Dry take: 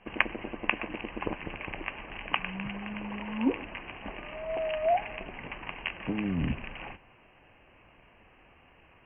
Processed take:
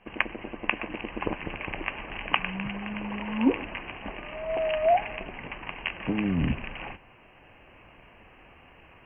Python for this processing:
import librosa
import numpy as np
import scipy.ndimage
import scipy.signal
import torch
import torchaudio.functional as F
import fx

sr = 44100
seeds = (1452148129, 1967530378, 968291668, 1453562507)

y = fx.rider(x, sr, range_db=10, speed_s=2.0)
y = y * librosa.db_to_amplitude(1.5)